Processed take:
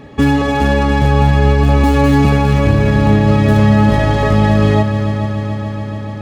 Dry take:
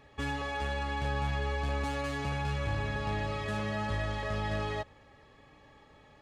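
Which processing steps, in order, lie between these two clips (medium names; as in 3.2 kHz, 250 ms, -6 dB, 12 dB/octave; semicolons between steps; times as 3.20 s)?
tracing distortion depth 0.066 ms; peaking EQ 220 Hz +14.5 dB 2.1 oct; on a send: multi-head delay 144 ms, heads second and third, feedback 72%, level -12 dB; on the sum: loudness maximiser +15.5 dB; trim -1 dB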